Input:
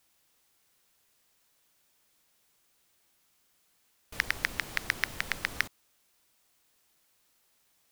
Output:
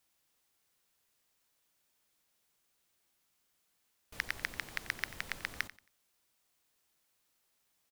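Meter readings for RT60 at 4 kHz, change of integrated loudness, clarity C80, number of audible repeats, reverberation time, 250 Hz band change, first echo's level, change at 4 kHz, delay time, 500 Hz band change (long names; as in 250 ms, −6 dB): no reverb audible, −7.0 dB, no reverb audible, 2, no reverb audible, −7.0 dB, −17.0 dB, −7.0 dB, 90 ms, −7.0 dB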